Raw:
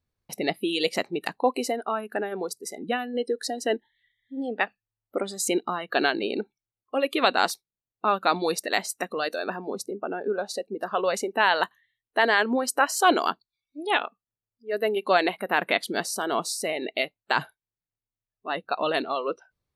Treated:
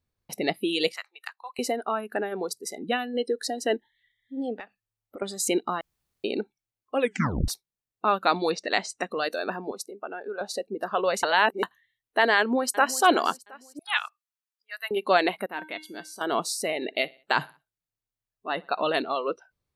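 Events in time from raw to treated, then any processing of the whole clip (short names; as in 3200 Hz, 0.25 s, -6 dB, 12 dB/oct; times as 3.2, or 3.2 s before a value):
0.92–1.59 ladder high-pass 1100 Hz, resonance 45%
2.35–3.3 dynamic EQ 3800 Hz, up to +5 dB, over -46 dBFS, Q 1.4
4.56–5.22 compressor 4:1, threshold -39 dBFS
5.81–6.24 room tone
6.99 tape stop 0.49 s
8.49–9.1 LPF 5000 Hz -> 8800 Hz 24 dB/oct
9.71–10.41 HPF 930 Hz 6 dB/oct
11.23–11.63 reverse
12.38–13.01 echo throw 0.36 s, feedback 40%, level -16.5 dB
13.79–14.91 inverse Chebyshev high-pass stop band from 410 Hz, stop band 50 dB
15.46–16.21 resonator 310 Hz, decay 0.32 s, harmonics odd, mix 80%
16.75–18.86 feedback echo 62 ms, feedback 44%, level -24 dB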